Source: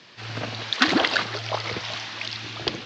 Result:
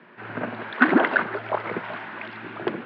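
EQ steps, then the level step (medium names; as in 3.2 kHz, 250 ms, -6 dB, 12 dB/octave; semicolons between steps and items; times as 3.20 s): cabinet simulation 170–2200 Hz, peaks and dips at 170 Hz +8 dB, 240 Hz +8 dB, 380 Hz +8 dB, 610 Hz +4 dB, 940 Hz +5 dB, 1.5 kHz +7 dB; -1.5 dB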